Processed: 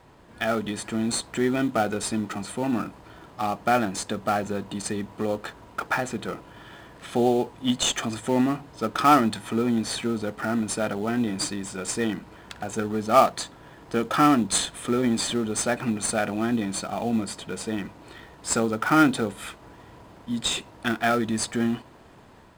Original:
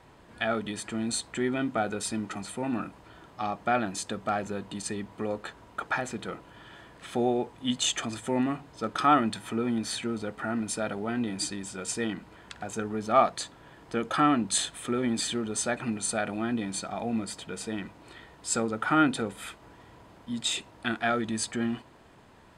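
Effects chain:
automatic gain control gain up to 3 dB
in parallel at −11 dB: sample-rate reduction 3,700 Hz, jitter 20%

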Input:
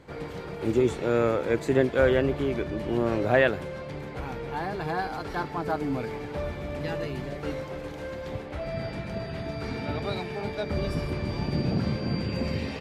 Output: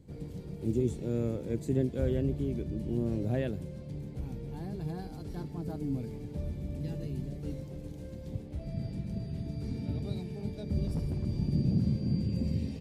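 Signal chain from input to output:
drawn EQ curve 200 Hz 0 dB, 1,300 Hz −26 dB, 9,100 Hz −4 dB
0:10.86–0:11.27: hard clipping −27.5 dBFS, distortion −25 dB

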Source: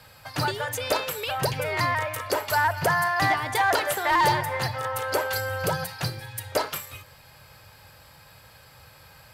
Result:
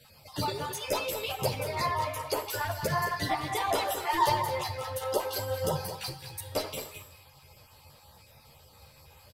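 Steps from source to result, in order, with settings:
time-frequency cells dropped at random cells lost 21%
parametric band 1,600 Hz −12 dB 0.59 octaves
single-tap delay 214 ms −10.5 dB
on a send at −11 dB: convolution reverb RT60 0.80 s, pre-delay 11 ms
on the sum: string-ensemble chorus

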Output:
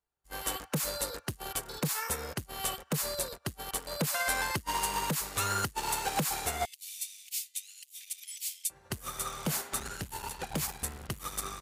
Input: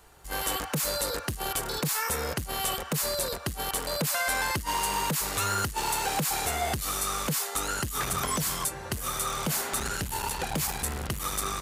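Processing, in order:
0:06.65–0:08.70: Butterworth high-pass 2,300 Hz 48 dB per octave
expander for the loud parts 2.5 to 1, over −49 dBFS

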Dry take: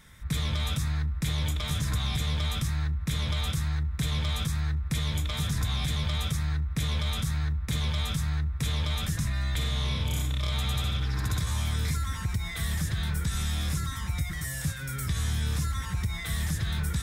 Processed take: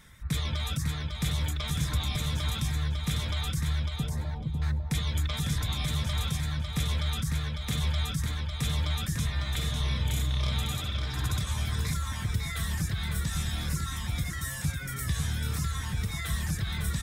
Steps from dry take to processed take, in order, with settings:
0:03.83–0:04.62: elliptic low-pass filter 940 Hz
reverb reduction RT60 0.79 s
repeating echo 551 ms, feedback 19%, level −5 dB

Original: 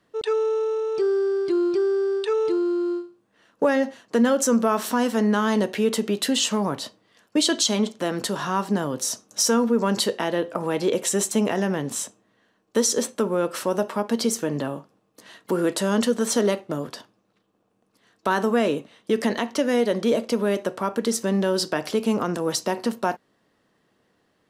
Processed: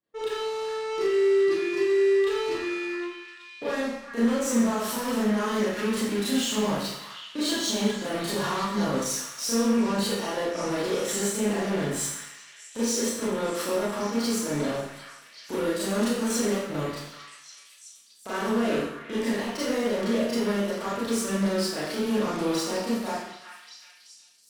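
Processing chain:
spectral magnitudes quantised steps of 15 dB
brickwall limiter −20 dBFS, peak gain reduction 10 dB
harmonic generator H 7 −18 dB, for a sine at −20 dBFS
on a send: echo through a band-pass that steps 378 ms, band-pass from 1,600 Hz, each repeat 0.7 octaves, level −6 dB
on the sum: four-comb reverb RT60 0.74 s, combs from 27 ms, DRR −10 dB
level −8.5 dB

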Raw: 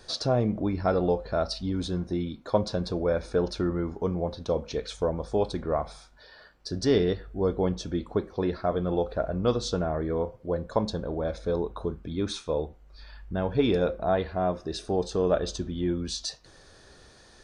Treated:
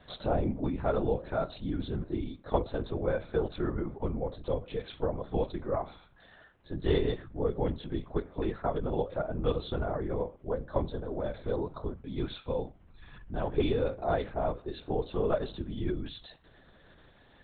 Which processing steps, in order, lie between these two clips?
linear-prediction vocoder at 8 kHz whisper
level −4 dB

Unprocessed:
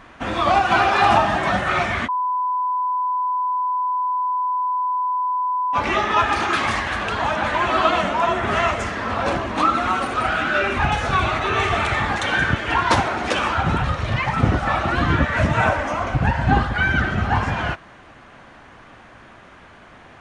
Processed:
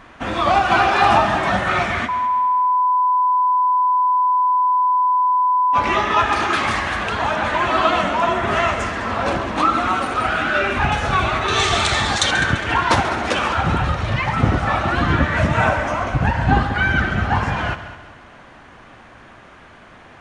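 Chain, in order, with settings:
0:11.48–0:12.31: flat-topped bell 5,700 Hz +13 dB
on a send: echo machine with several playback heads 68 ms, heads second and third, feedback 44%, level −14.5 dB
on the sum: level +1 dB

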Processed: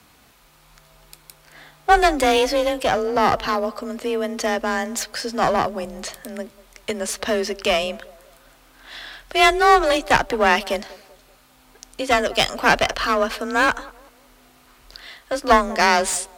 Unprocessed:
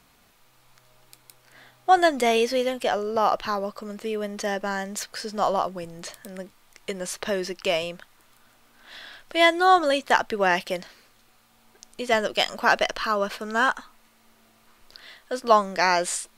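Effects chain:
asymmetric clip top −26 dBFS
feedback echo with a band-pass in the loop 193 ms, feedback 41%, band-pass 500 Hz, level −19 dB
frequency shifter +28 Hz
level +6 dB

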